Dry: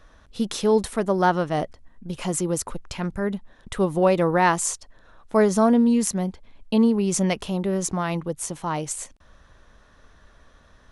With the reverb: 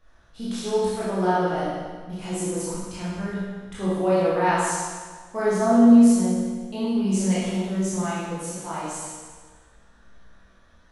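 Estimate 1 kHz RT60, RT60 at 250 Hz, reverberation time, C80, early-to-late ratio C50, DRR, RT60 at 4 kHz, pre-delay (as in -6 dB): 1.5 s, 1.5 s, 1.5 s, 0.0 dB, -3.0 dB, -10.5 dB, 1.4 s, 16 ms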